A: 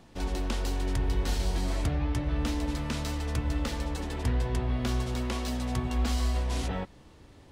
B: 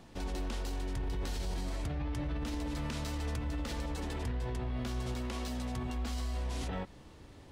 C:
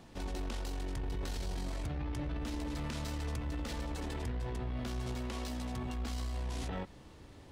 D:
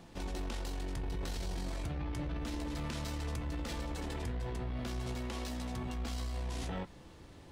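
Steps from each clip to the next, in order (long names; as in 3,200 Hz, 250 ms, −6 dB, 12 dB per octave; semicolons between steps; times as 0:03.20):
brickwall limiter −29 dBFS, peak gain reduction 10 dB
one-sided soft clipper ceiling −32 dBFS
tuned comb filter 170 Hz, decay 0.19 s, harmonics all, mix 60%; level +6 dB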